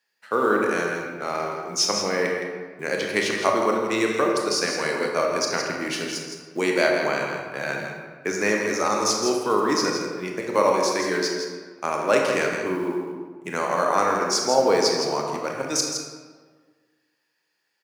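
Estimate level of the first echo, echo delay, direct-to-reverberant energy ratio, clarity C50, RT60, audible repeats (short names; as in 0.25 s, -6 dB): -7.5 dB, 0.165 s, -0.5 dB, 1.0 dB, 1.5 s, 1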